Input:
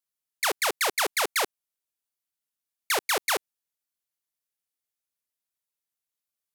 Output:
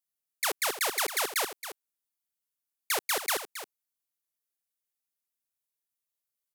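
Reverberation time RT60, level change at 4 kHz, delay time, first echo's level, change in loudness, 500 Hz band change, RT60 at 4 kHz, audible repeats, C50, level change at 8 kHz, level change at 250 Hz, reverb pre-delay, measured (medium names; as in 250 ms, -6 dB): no reverb, -3.5 dB, 272 ms, -11.5 dB, -3.0 dB, -4.5 dB, no reverb, 1, no reverb, -1.5 dB, -4.5 dB, no reverb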